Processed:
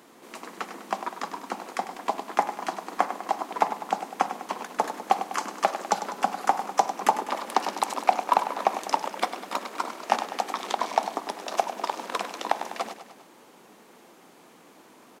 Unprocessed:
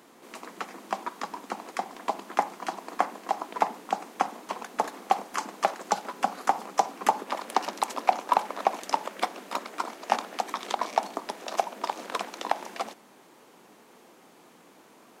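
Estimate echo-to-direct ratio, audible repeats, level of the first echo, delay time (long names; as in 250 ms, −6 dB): −9.5 dB, 4, −11.0 dB, 100 ms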